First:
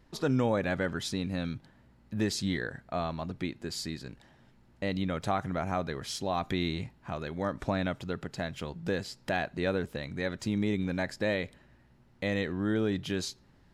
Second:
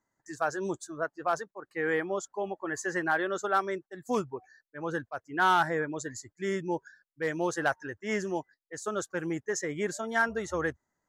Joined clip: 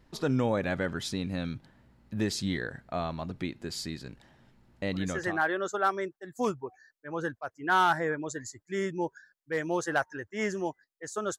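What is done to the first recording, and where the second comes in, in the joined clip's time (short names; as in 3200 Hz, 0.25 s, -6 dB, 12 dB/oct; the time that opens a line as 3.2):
first
5.16 switch to second from 2.86 s, crossfade 0.52 s equal-power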